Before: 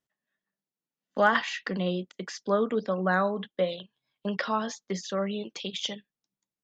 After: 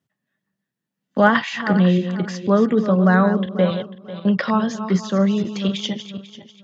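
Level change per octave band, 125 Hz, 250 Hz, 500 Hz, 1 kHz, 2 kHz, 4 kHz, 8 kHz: +16.0 dB, +15.0 dB, +8.0 dB, +6.5 dB, +6.5 dB, +5.0 dB, no reading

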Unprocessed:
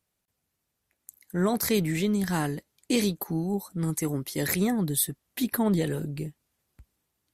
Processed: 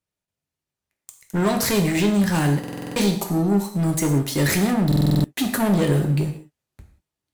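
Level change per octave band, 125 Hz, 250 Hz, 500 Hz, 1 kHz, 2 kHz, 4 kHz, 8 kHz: +10.0 dB, +7.0 dB, +5.5 dB, +7.5 dB, +7.5 dB, +6.5 dB, +3.5 dB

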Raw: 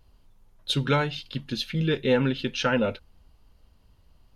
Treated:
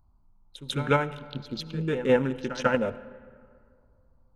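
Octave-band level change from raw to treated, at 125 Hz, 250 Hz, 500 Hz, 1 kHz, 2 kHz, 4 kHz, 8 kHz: -4.0 dB, -2.5 dB, +0.5 dB, +1.0 dB, -1.5 dB, -8.0 dB, -4.0 dB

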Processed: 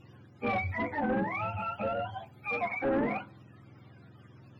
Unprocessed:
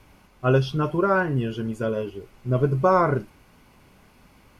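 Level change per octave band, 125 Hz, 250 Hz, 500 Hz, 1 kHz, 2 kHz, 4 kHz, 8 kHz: -16.0 dB, -8.0 dB, -11.0 dB, -7.5 dB, -4.0 dB, -10.5 dB, no reading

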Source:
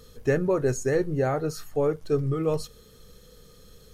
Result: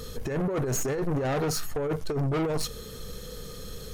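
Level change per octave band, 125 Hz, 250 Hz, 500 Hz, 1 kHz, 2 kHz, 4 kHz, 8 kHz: -1.0 dB, -1.5 dB, -5.0 dB, -0.5 dB, -2.5 dB, +7.5 dB, +5.5 dB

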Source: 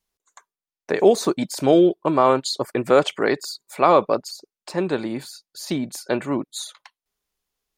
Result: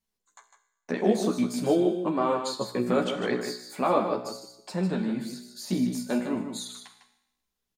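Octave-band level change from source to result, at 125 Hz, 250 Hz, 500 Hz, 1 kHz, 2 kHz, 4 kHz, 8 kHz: -2.5 dB, -3.5 dB, -8.5 dB, -8.5 dB, -7.5 dB, -7.0 dB, -6.5 dB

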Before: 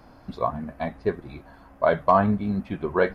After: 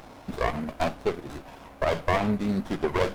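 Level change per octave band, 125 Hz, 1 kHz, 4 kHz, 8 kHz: -2.0 dB, -5.5 dB, +8.0 dB, no reading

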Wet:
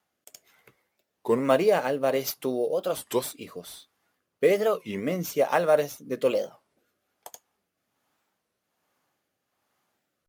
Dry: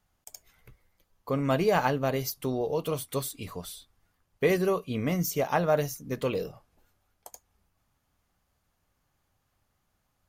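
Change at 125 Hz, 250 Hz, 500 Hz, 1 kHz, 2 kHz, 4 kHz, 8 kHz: -7.5 dB, -0.5 dB, +4.5 dB, +1.0 dB, +1.0 dB, +1.5 dB, 0.0 dB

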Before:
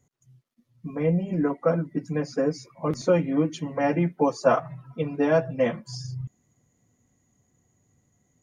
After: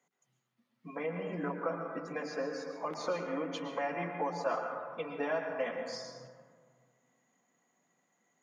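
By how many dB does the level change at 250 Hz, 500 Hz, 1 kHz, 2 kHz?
-15.0 dB, -11.0 dB, -7.0 dB, -5.0 dB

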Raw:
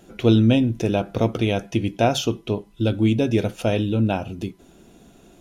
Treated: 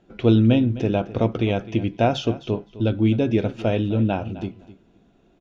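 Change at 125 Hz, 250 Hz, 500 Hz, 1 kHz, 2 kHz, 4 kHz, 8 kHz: 0.0 dB, 0.0 dB, -0.5 dB, -0.5 dB, -2.0 dB, -4.0 dB, under -10 dB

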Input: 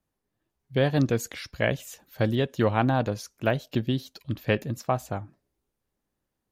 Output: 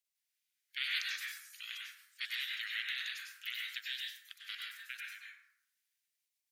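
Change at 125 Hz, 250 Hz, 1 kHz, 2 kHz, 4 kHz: under -40 dB, under -40 dB, -27.0 dB, -5.0 dB, +0.5 dB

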